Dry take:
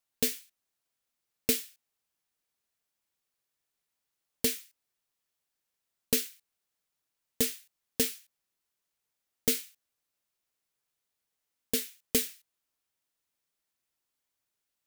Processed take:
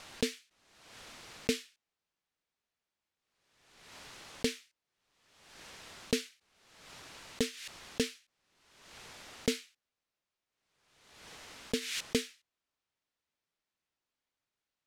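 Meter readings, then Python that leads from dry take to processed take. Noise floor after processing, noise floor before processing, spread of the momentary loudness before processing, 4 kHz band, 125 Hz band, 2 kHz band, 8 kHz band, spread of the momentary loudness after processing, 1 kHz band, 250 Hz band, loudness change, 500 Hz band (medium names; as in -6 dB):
under -85 dBFS, -85 dBFS, 14 LU, -1.5 dB, +0.5 dB, +0.5 dB, -8.5 dB, 18 LU, +4.0 dB, 0.0 dB, -6.5 dB, 0.0 dB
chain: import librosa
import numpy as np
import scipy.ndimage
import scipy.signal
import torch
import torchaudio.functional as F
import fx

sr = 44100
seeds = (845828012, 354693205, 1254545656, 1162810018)

y = scipy.signal.sosfilt(scipy.signal.bessel(2, 4200.0, 'lowpass', norm='mag', fs=sr, output='sos'), x)
y = fx.pre_swell(y, sr, db_per_s=50.0)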